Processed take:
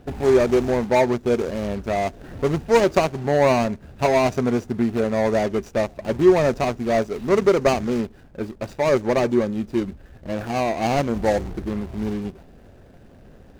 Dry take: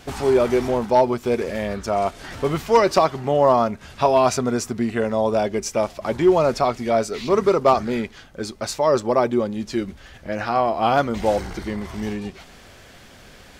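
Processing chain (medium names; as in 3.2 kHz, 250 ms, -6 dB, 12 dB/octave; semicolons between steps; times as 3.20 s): median filter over 41 samples; dynamic bell 6.4 kHz, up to +5 dB, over -52 dBFS, Q 2.1; trim +2 dB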